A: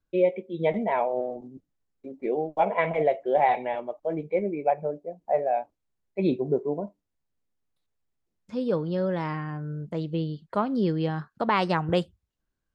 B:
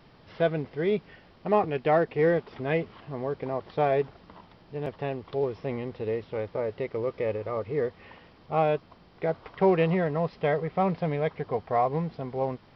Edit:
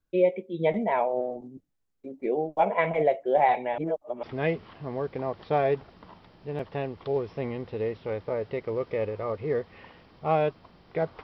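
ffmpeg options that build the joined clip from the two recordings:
-filter_complex "[0:a]apad=whole_dur=11.23,atrim=end=11.23,asplit=2[a][b];[a]atrim=end=3.782[c];[b]atrim=start=3.778:end=4.232,asetpts=PTS-STARTPTS,areverse[d];[1:a]atrim=start=2.498:end=9.5[e];[c][d]acrossfade=d=0.004:c1=hsin:c2=hsin[f];[f][e]acrossfade=d=0.004:c1=hsin:c2=hsin"

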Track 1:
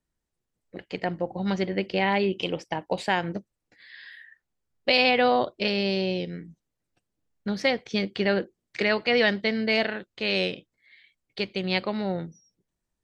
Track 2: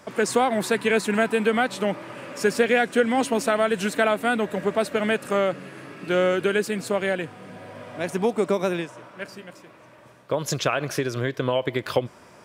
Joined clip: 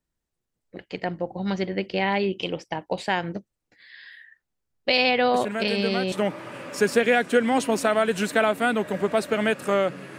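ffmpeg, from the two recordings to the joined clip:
-filter_complex "[1:a]asplit=2[a][b];[0:a]apad=whole_dur=10.18,atrim=end=10.18,atrim=end=6.122[c];[b]atrim=start=1.748:end=5.81[d];[a]atrim=start=0.97:end=1.75,asetpts=PTS-STARTPTS,volume=-8dB,afade=t=in:d=0.004:c=hsin,afade=t=out:st=0.776:d=0.004:c=hsin,adelay=5340[e];[c][d]acrossfade=d=0.004:c1=hsin:c2=hsin[f];[f][e]amix=inputs=2:normalize=0"

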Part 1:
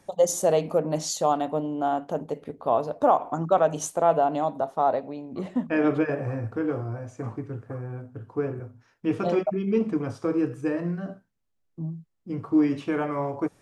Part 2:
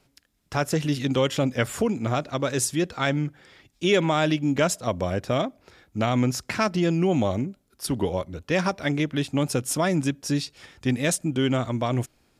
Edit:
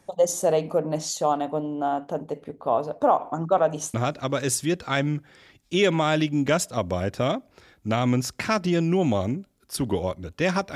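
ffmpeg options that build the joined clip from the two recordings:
-filter_complex "[0:a]apad=whole_dur=10.75,atrim=end=10.75,atrim=end=3.942[a];[1:a]atrim=start=2.038:end=8.85[b];[a][b]acrossfade=d=0.004:c1=hsin:c2=hsin"

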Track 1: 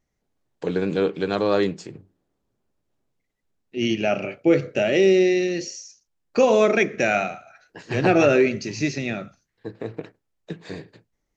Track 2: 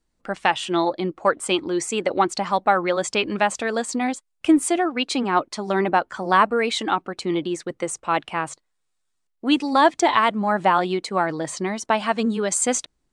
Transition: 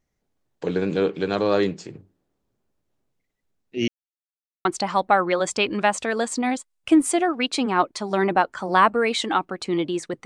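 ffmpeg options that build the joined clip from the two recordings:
-filter_complex "[0:a]apad=whole_dur=10.25,atrim=end=10.25,asplit=2[a][b];[a]atrim=end=3.88,asetpts=PTS-STARTPTS,afade=t=out:st=3.876:d=0.004:c=hsin[c];[b]atrim=start=3.88:end=4.65,asetpts=PTS-STARTPTS,volume=0[d];[1:a]atrim=start=2.22:end=7.82,asetpts=PTS-STARTPTS,afade=t=in:d=0.004:c=hsin[e];[c][d][e]concat=n=3:v=0:a=1"

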